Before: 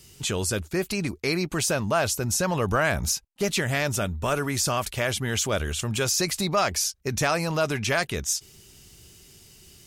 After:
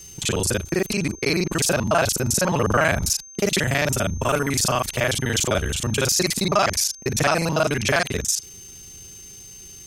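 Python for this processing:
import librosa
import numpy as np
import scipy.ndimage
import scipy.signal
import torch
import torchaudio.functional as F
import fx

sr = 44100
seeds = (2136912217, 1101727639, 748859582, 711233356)

y = fx.local_reverse(x, sr, ms=36.0)
y = y + 10.0 ** (-45.0 / 20.0) * np.sin(2.0 * np.pi * 6300.0 * np.arange(len(y)) / sr)
y = y * 10.0 ** (4.5 / 20.0)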